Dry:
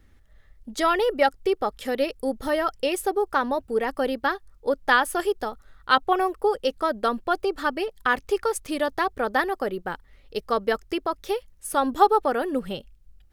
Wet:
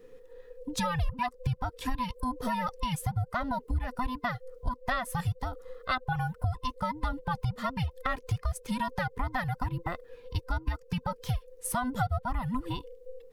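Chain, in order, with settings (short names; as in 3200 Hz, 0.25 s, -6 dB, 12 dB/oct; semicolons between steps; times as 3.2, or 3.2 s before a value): band inversion scrambler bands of 500 Hz; low shelf 120 Hz +10.5 dB; compressor 4:1, threshold -29 dBFS, peak gain reduction 16.5 dB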